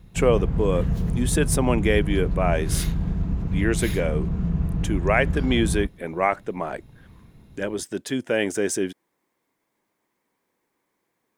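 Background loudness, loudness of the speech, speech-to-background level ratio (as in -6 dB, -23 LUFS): -26.5 LUFS, -25.0 LUFS, 1.5 dB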